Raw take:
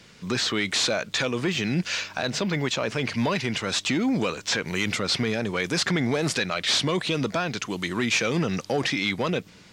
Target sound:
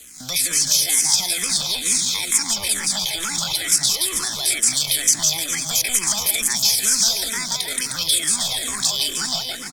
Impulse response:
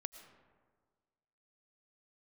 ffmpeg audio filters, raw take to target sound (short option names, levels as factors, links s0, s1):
-filter_complex "[0:a]asplit=2[s0][s1];[s1]acompressor=threshold=0.0141:ratio=8,volume=1.33[s2];[s0][s2]amix=inputs=2:normalize=0,asuperstop=centerf=2000:order=12:qfactor=7.7,aecho=1:1:170|306|414.8|501.8|571.5:0.631|0.398|0.251|0.158|0.1,acrossover=split=350[s3][s4];[s3]aeval=exprs='0.158*sin(PI/2*1.78*val(0)/0.158)':c=same[s5];[s5][s4]amix=inputs=2:normalize=0,equalizer=f=220:w=0.53:g=-12,aeval=exprs='sgn(val(0))*max(abs(val(0))-0.00531,0)':c=same,lowpass=9900[s6];[1:a]atrim=start_sample=2205,atrim=end_sample=3528,asetrate=61740,aresample=44100[s7];[s6][s7]afir=irnorm=-1:irlink=0,asetrate=62367,aresample=44100,atempo=0.707107,acrossover=split=200|740|7100[s8][s9][s10][s11];[s8]acompressor=threshold=0.00794:ratio=4[s12];[s9]acompressor=threshold=0.00398:ratio=4[s13];[s10]acompressor=threshold=0.0158:ratio=4[s14];[s11]acompressor=threshold=0.0126:ratio=4[s15];[s12][s13][s14][s15]amix=inputs=4:normalize=0,crystalizer=i=5.5:c=0,asplit=2[s16][s17];[s17]afreqshift=-2.2[s18];[s16][s18]amix=inputs=2:normalize=1,volume=2.24"